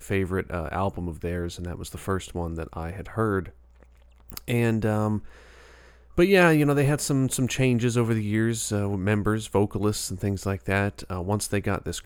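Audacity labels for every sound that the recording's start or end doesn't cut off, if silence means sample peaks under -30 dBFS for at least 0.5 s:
4.300000	5.190000	sound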